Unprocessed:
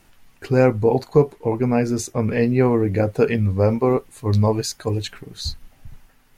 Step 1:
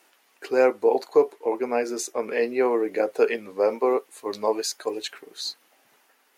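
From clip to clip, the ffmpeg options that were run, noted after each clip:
-af "highpass=f=350:w=0.5412,highpass=f=350:w=1.3066,volume=0.841"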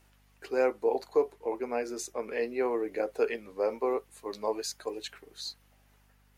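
-af "aeval=exprs='val(0)+0.00158*(sin(2*PI*50*n/s)+sin(2*PI*2*50*n/s)/2+sin(2*PI*3*50*n/s)/3+sin(2*PI*4*50*n/s)/4+sin(2*PI*5*50*n/s)/5)':c=same,volume=0.422"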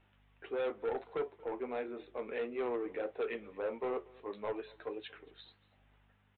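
-af "aresample=8000,asoftclip=type=tanh:threshold=0.0422,aresample=44100,flanger=delay=9.5:depth=3.3:regen=-69:speed=1.6:shape=sinusoidal,aecho=1:1:231:0.0668,volume=1.12"

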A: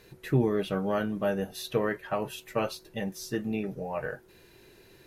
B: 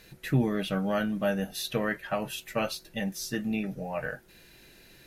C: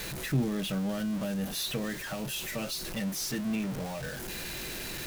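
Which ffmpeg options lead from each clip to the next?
-af "equalizer=f=100:t=o:w=0.67:g=-9,equalizer=f=400:t=o:w=0.67:g=-11,equalizer=f=1000:t=o:w=0.67:g=-7,volume=1.68"
-filter_complex "[0:a]aeval=exprs='val(0)+0.5*0.0376*sgn(val(0))':c=same,acrossover=split=360|3000[s0][s1][s2];[s1]acompressor=threshold=0.0178:ratio=6[s3];[s0][s3][s2]amix=inputs=3:normalize=0,volume=0.631"

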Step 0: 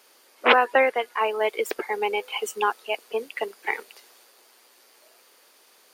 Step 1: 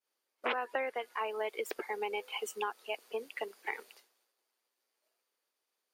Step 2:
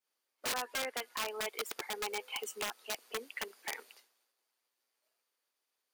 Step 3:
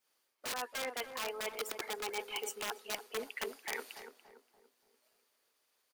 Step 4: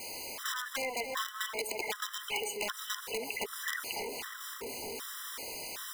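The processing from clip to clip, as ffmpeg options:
-af "agate=range=0.0224:threshold=0.00631:ratio=3:detection=peak,acompressor=threshold=0.0708:ratio=4,volume=0.376"
-af "equalizer=f=250:w=2.6:g=7,aeval=exprs='(mod(23.7*val(0)+1,2)-1)/23.7':c=same,lowshelf=f=340:g=-12"
-filter_complex "[0:a]areverse,acompressor=threshold=0.00631:ratio=6,areverse,asplit=2[s0][s1];[s1]adelay=287,lowpass=f=1000:p=1,volume=0.447,asplit=2[s2][s3];[s3]adelay=287,lowpass=f=1000:p=1,volume=0.47,asplit=2[s4][s5];[s5]adelay=287,lowpass=f=1000:p=1,volume=0.47,asplit=2[s6][s7];[s7]adelay=287,lowpass=f=1000:p=1,volume=0.47,asplit=2[s8][s9];[s9]adelay=287,lowpass=f=1000:p=1,volume=0.47,asplit=2[s10][s11];[s11]adelay=287,lowpass=f=1000:p=1,volume=0.47[s12];[s0][s2][s4][s6][s8][s10][s12]amix=inputs=7:normalize=0,volume=2.37"
-filter_complex "[0:a]aeval=exprs='val(0)+0.5*0.00841*sgn(val(0))':c=same,acrossover=split=850|6000[s0][s1][s2];[s0]acompressor=threshold=0.00398:ratio=4[s3];[s1]acompressor=threshold=0.00891:ratio=4[s4];[s2]acompressor=threshold=0.00562:ratio=4[s5];[s3][s4][s5]amix=inputs=3:normalize=0,afftfilt=real='re*gt(sin(2*PI*1.3*pts/sr)*(1-2*mod(floor(b*sr/1024/1000),2)),0)':imag='im*gt(sin(2*PI*1.3*pts/sr)*(1-2*mod(floor(b*sr/1024/1000),2)),0)':win_size=1024:overlap=0.75,volume=2.82"

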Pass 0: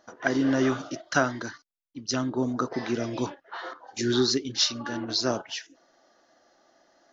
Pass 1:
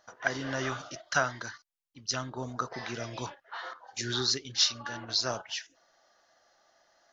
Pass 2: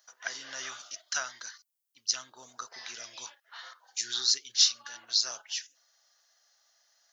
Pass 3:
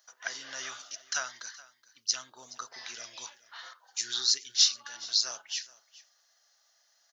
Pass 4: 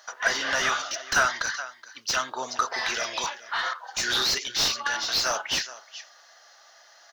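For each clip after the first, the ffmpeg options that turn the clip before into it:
-af "equalizer=f=290:w=0.97:g=-14.5,volume=0.891"
-af "aderivative,volume=2.11"
-af "aecho=1:1:422:0.1"
-filter_complex "[0:a]asplit=2[s0][s1];[s1]highpass=f=720:p=1,volume=22.4,asoftclip=type=tanh:threshold=0.335[s2];[s0][s2]amix=inputs=2:normalize=0,lowpass=f=1000:p=1,volume=0.501,volume=1.78"

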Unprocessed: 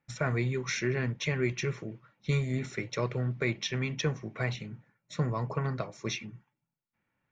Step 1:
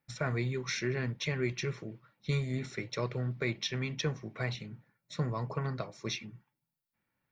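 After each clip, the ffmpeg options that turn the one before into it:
-af "aexciter=amount=1.4:drive=5.2:freq=3800,volume=0.708"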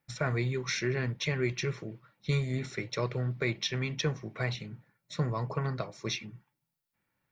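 -af "equalizer=f=240:w=4.9:g=-3,volume=1.33"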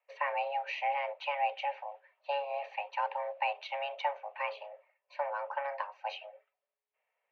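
-af "afreqshift=420,highpass=f=360:w=0.5412,highpass=f=360:w=1.3066,equalizer=f=550:t=q:w=4:g=-8,equalizer=f=880:t=q:w=4:g=3,equalizer=f=1400:t=q:w=4:g=-8,lowpass=f=2700:w=0.5412,lowpass=f=2700:w=1.3066" -ar 44100 -c:a ac3 -b:a 96k

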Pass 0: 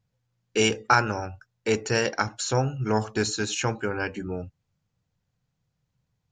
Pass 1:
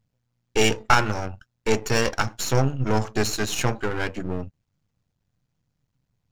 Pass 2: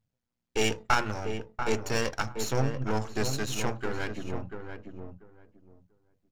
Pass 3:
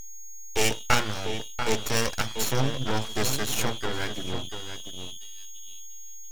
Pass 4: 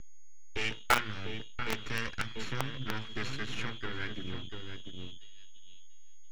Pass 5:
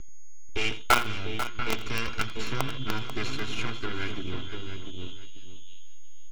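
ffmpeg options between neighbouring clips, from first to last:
-filter_complex "[0:a]aeval=exprs='if(lt(val(0),0),0.251*val(0),val(0))':c=same,lowshelf=f=190:g=3,asplit=2[s0][s1];[s1]aeval=exprs='sgn(val(0))*max(abs(val(0))-0.00944,0)':c=same,volume=0.355[s2];[s0][s2]amix=inputs=2:normalize=0,volume=1.41"
-filter_complex "[0:a]bandreject=f=60:t=h:w=6,bandreject=f=120:t=h:w=6,bandreject=f=180:t=h:w=6,asplit=2[s0][s1];[s1]adelay=689,lowpass=f=1200:p=1,volume=0.501,asplit=2[s2][s3];[s3]adelay=689,lowpass=f=1200:p=1,volume=0.2,asplit=2[s4][s5];[s5]adelay=689,lowpass=f=1200:p=1,volume=0.2[s6];[s2][s4][s6]amix=inputs=3:normalize=0[s7];[s0][s7]amix=inputs=2:normalize=0,volume=0.447"
-af "aeval=exprs='val(0)+0.00891*sin(2*PI*3300*n/s)':c=same,aemphasis=mode=production:type=cd,aeval=exprs='abs(val(0))':c=same,volume=1.41"
-filter_complex "[0:a]lowpass=2100,acrossover=split=460|1300[s0][s1][s2];[s0]acompressor=threshold=0.0251:ratio=6[s3];[s1]acrusher=bits=3:mix=0:aa=0.000001[s4];[s3][s4][s2]amix=inputs=3:normalize=0"
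-af "bandreject=f=1800:w=5.2,aecho=1:1:2.9:0.32,aecho=1:1:85|491:0.158|0.266,volume=1.78"

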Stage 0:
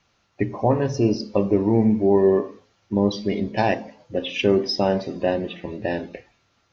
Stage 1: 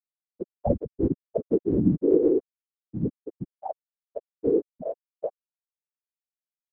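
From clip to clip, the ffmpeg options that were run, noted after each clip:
-af "aeval=exprs='val(0)+0.0316*(sin(2*PI*50*n/s)+sin(2*PI*2*50*n/s)/2+sin(2*PI*3*50*n/s)/3+sin(2*PI*4*50*n/s)/4+sin(2*PI*5*50*n/s)/5)':c=same,afftfilt=real='re*gte(hypot(re,im),0.891)':imag='im*gte(hypot(re,im),0.891)':win_size=1024:overlap=0.75,afftfilt=real='hypot(re,im)*cos(2*PI*random(0))':imag='hypot(re,im)*sin(2*PI*random(1))':win_size=512:overlap=0.75,volume=1.78"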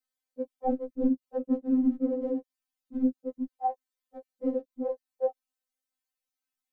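-af "acompressor=threshold=0.0447:ratio=4,afftfilt=real='re*3.46*eq(mod(b,12),0)':imag='im*3.46*eq(mod(b,12),0)':win_size=2048:overlap=0.75,volume=2.37"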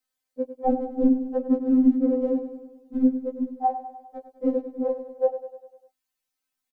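-af "aecho=1:1:100|200|300|400|500|600:0.266|0.152|0.0864|0.0493|0.0281|0.016,volume=1.88"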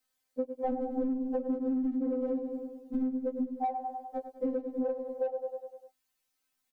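-filter_complex "[0:a]asplit=2[s0][s1];[s1]asoftclip=type=tanh:threshold=0.0794,volume=0.447[s2];[s0][s2]amix=inputs=2:normalize=0,alimiter=limit=0.178:level=0:latency=1:release=46,acompressor=threshold=0.0355:ratio=6"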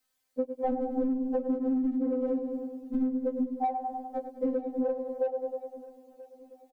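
-af "aecho=1:1:983|1966|2949:0.1|0.042|0.0176,volume=1.33"

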